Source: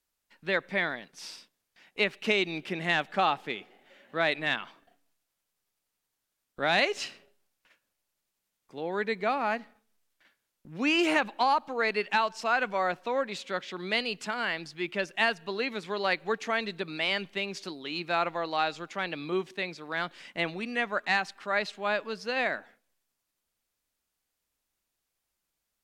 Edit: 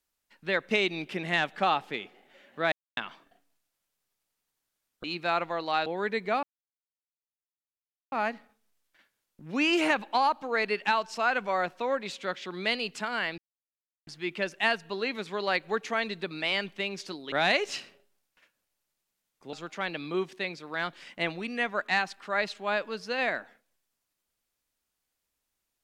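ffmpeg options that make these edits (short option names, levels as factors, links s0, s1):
-filter_complex "[0:a]asplit=10[s0][s1][s2][s3][s4][s5][s6][s7][s8][s9];[s0]atrim=end=0.712[s10];[s1]atrim=start=2.268:end=4.28,asetpts=PTS-STARTPTS,afade=t=out:st=2.008:d=0.004:c=hsin[s11];[s2]atrim=start=4.28:end=4.53,asetpts=PTS-STARTPTS,volume=0[s12];[s3]atrim=start=4.53:end=6.602,asetpts=PTS-STARTPTS,afade=t=in:d=0.004:c=hsin[s13];[s4]atrim=start=17.888:end=18.712[s14];[s5]atrim=start=8.808:end=9.38,asetpts=PTS-STARTPTS,afade=t=out:st=0.568:d=0.004:c=hsin,apad=pad_dur=1.69[s15];[s6]atrim=start=9.38:end=14.64,asetpts=PTS-STARTPTS,afade=t=in:d=0.004:c=hsin,afade=t=out:st=5.256:d=0.004:c=hsin,apad=pad_dur=0.69[s16];[s7]atrim=start=14.64:end=17.892,asetpts=PTS-STARTPTS,afade=t=in:d=0.004:c=hsin[s17];[s8]atrim=start=6.598:end=8.812[s18];[s9]atrim=start=18.708[s19];[s11][s12][s13]concat=n=3:v=0:a=1[s20];[s10][s20]acrossfade=d=0.004:c1=hsin:c2=hsin[s21];[s21][s14]acrossfade=d=0.004:c1=hsin:c2=hsin[s22];[s15][s16][s17]concat=n=3:v=0:a=1[s23];[s22][s23]acrossfade=d=0.004:c1=hsin:c2=hsin[s24];[s24][s18]acrossfade=d=0.004:c1=hsin:c2=hsin[s25];[s25][s19]acrossfade=d=0.004:c1=hsin:c2=hsin"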